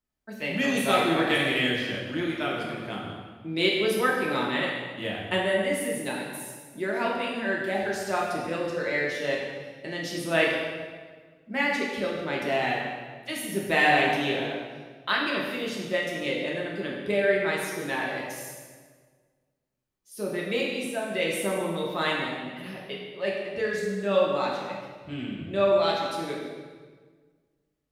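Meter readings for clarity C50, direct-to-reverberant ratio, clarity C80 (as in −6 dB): 1.0 dB, −4.0 dB, 3.0 dB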